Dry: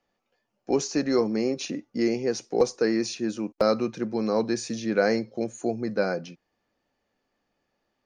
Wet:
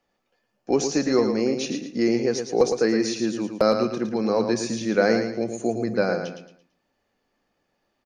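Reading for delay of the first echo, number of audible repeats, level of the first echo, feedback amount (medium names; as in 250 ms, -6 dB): 112 ms, 3, -7.0 dB, 33%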